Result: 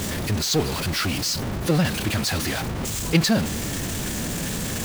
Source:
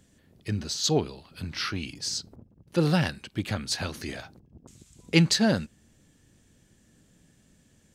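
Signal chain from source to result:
converter with a step at zero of −20 dBFS
phase-vocoder stretch with locked phases 0.61×

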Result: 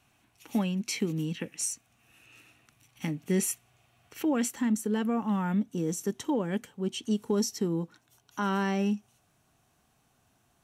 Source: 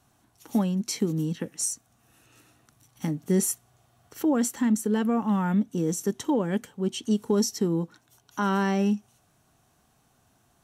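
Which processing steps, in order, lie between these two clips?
parametric band 2,500 Hz +13.5 dB 0.72 octaves, from 0:04.50 +4 dB
level −4 dB

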